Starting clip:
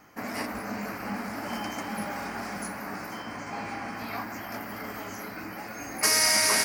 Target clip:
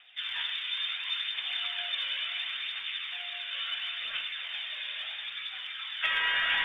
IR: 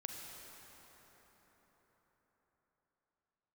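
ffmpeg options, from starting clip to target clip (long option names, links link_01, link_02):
-filter_complex "[0:a]lowpass=frequency=3200:width_type=q:width=0.5098,lowpass=frequency=3200:width_type=q:width=0.6013,lowpass=frequency=3200:width_type=q:width=0.9,lowpass=frequency=3200:width_type=q:width=2.563,afreqshift=-3800,aphaser=in_gain=1:out_gain=1:delay=2.1:decay=0.41:speed=0.72:type=triangular,bandreject=frequency=59.61:width_type=h:width=4,bandreject=frequency=119.22:width_type=h:width=4,bandreject=frequency=178.83:width_type=h:width=4,bandreject=frequency=238.44:width_type=h:width=4,bandreject=frequency=298.05:width_type=h:width=4,bandreject=frequency=357.66:width_type=h:width=4,bandreject=frequency=417.27:width_type=h:width=4,bandreject=frequency=476.88:width_type=h:width=4,bandreject=frequency=536.49:width_type=h:width=4,bandreject=frequency=596.1:width_type=h:width=4,bandreject=frequency=655.71:width_type=h:width=4,bandreject=frequency=715.32:width_type=h:width=4,bandreject=frequency=774.93:width_type=h:width=4,bandreject=frequency=834.54:width_type=h:width=4,bandreject=frequency=894.15:width_type=h:width=4,bandreject=frequency=953.76:width_type=h:width=4,bandreject=frequency=1013.37:width_type=h:width=4,bandreject=frequency=1072.98:width_type=h:width=4,bandreject=frequency=1132.59:width_type=h:width=4,bandreject=frequency=1192.2:width_type=h:width=4,bandreject=frequency=1251.81:width_type=h:width=4,bandreject=frequency=1311.42:width_type=h:width=4,bandreject=frequency=1371.03:width_type=h:width=4,bandreject=frequency=1430.64:width_type=h:width=4,bandreject=frequency=1490.25:width_type=h:width=4,bandreject=frequency=1549.86:width_type=h:width=4,bandreject=frequency=1609.47:width_type=h:width=4,bandreject=frequency=1669.08:width_type=h:width=4,bandreject=frequency=1728.69:width_type=h:width=4,bandreject=frequency=1788.3:width_type=h:width=4,bandreject=frequency=1847.91:width_type=h:width=4,bandreject=frequency=1907.52:width_type=h:width=4,bandreject=frequency=1967.13:width_type=h:width=4,bandreject=frequency=2026.74:width_type=h:width=4[link_01];[1:a]atrim=start_sample=2205,atrim=end_sample=4410,asetrate=32193,aresample=44100[link_02];[link_01][link_02]afir=irnorm=-1:irlink=0,volume=1.5dB"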